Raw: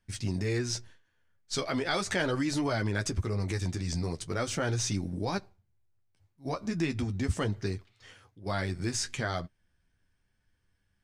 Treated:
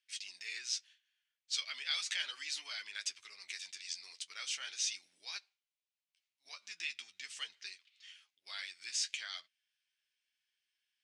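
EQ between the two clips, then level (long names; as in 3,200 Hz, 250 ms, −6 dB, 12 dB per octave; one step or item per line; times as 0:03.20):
four-pole ladder band-pass 3,300 Hz, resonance 40%
high-shelf EQ 4,600 Hz +10.5 dB
+6.0 dB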